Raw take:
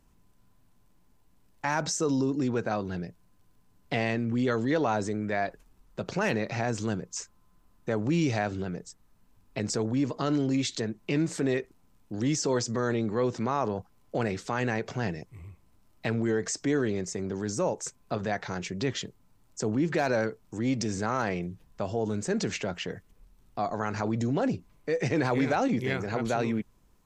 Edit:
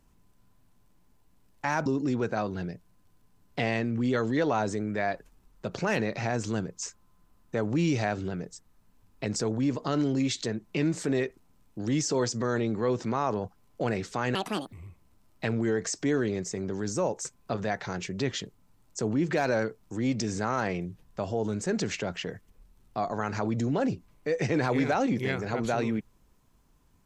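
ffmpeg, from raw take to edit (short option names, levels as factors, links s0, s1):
-filter_complex "[0:a]asplit=4[s0][s1][s2][s3];[s0]atrim=end=1.862[s4];[s1]atrim=start=2.198:end=14.694[s5];[s2]atrim=start=14.69:end=15.34,asetpts=PTS-STARTPTS,asetrate=76293,aresample=44100,atrim=end_sample=16569,asetpts=PTS-STARTPTS[s6];[s3]atrim=start=15.336[s7];[s4][s5]acrossfade=d=0.004:c1=hsin:c2=hsin[s8];[s8][s6]acrossfade=d=0.004:c1=hsin:c2=hsin[s9];[s9][s7]acrossfade=d=0.004:c1=hsin:c2=hsin"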